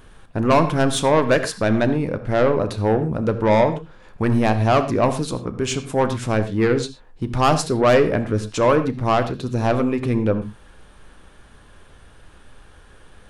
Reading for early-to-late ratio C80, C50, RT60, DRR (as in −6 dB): 14.0 dB, 12.0 dB, non-exponential decay, 8.5 dB